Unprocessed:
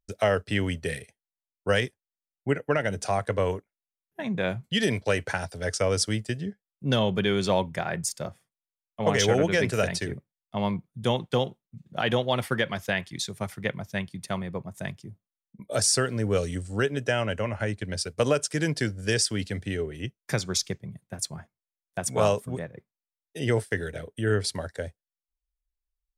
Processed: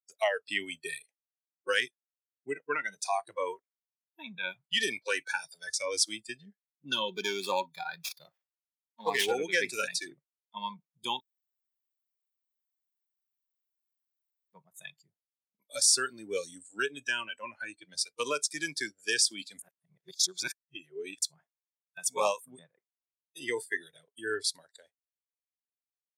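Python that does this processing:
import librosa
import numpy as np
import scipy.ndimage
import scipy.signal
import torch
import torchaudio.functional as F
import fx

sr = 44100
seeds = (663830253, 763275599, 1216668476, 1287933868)

y = fx.running_max(x, sr, window=5, at=(7.08, 9.32))
y = fx.edit(y, sr, fx.room_tone_fill(start_s=11.2, length_s=3.33),
    fx.reverse_span(start_s=19.59, length_s=1.63), tone=tone)
y = fx.noise_reduce_blind(y, sr, reduce_db=22)
y = scipy.signal.sosfilt(scipy.signal.butter(2, 620.0, 'highpass', fs=sr, output='sos'), y)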